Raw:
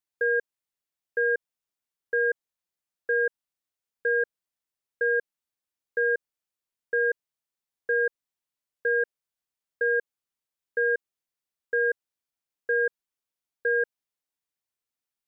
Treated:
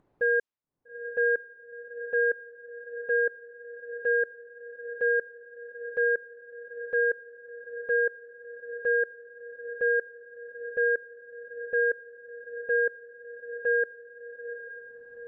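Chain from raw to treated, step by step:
low-pass that shuts in the quiet parts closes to 570 Hz, open at −20.5 dBFS
upward compression, threshold −43 dBFS
on a send: feedback delay with all-pass diffusion 870 ms, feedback 58%, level −12 dB

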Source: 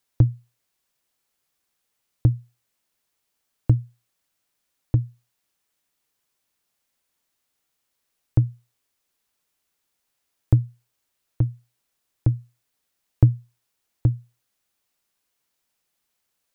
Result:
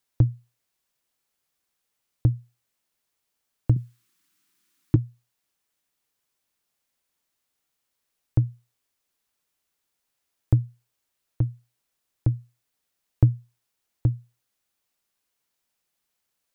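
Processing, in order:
0:03.76–0:04.96: drawn EQ curve 110 Hz 0 dB, 160 Hz +10 dB, 350 Hz +12 dB, 510 Hz −9 dB, 1,200 Hz +8 dB
level −2.5 dB

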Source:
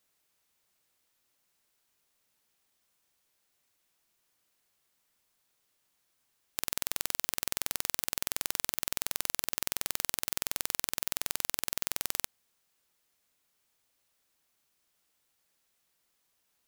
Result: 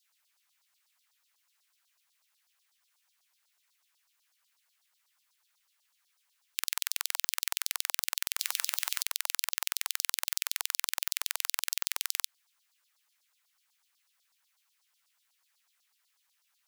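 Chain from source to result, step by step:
0:08.39–0:09.03: bit-depth reduction 8 bits, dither triangular
auto-filter high-pass saw down 8.1 Hz 820–5,100 Hz

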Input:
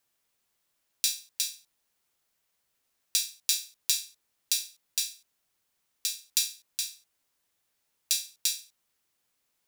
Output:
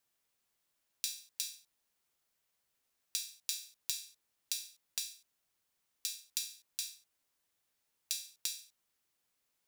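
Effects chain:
in parallel at −9 dB: wrap-around overflow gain 7 dB
on the sum: downward compressor 4 to 1, threshold −27 dBFS, peak gain reduction 8 dB
level −7 dB

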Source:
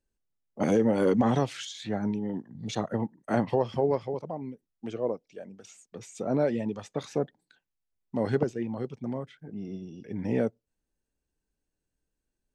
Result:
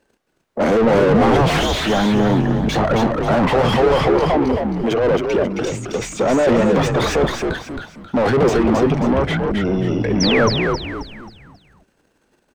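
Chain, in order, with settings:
transient designer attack 0 dB, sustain +12 dB
mid-hump overdrive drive 33 dB, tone 1,100 Hz, clips at −10 dBFS
sound drawn into the spectrogram fall, 0:10.20–0:10.49, 930–6,300 Hz −23 dBFS
on a send: echo with shifted repeats 268 ms, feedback 38%, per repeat −77 Hz, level −4 dB
on the sum: level +2.5 dB

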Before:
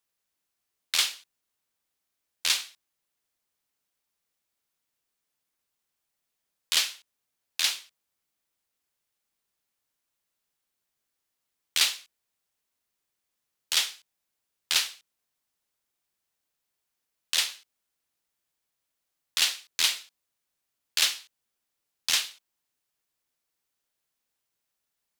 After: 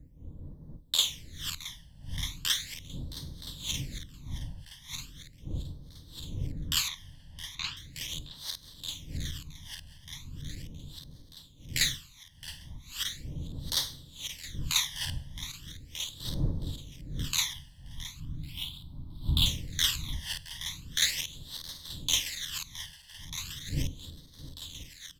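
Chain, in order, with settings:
feedback delay that plays each chunk backwards 621 ms, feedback 72%, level −8 dB
wind on the microphone 130 Hz −40 dBFS
0:06.88–0:07.77: high-frequency loss of the air 190 metres
0:17.53–0:19.46: phaser with its sweep stopped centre 1,800 Hz, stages 6
single-tap delay 668 ms −15.5 dB
coupled-rooms reverb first 0.71 s, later 3 s, from −18 dB, DRR 17 dB
all-pass phaser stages 12, 0.38 Hz, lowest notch 390–2,500 Hz
EQ curve with evenly spaced ripples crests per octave 1.1, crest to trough 7 dB
level −1.5 dB

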